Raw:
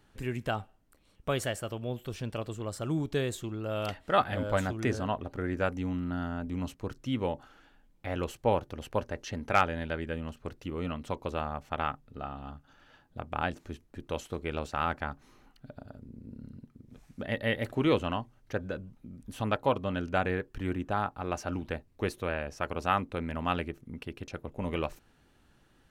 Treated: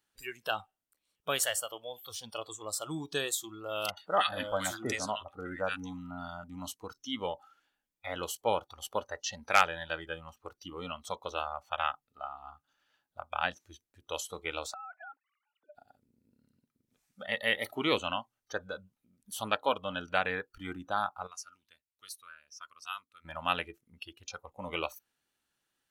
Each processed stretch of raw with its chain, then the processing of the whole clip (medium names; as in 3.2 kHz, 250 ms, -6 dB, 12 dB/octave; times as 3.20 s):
3.90–6.44 s: bands offset in time lows, highs 70 ms, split 1.4 kHz + upward compressor, threshold -50 dBFS
14.74–15.75 s: formants replaced by sine waves + compression 12:1, threshold -42 dBFS
21.27–23.25 s: amplifier tone stack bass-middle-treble 5-5-5 + band-stop 800 Hz, Q 6.2
whole clip: spectral noise reduction 17 dB; tilt EQ +3.5 dB/octave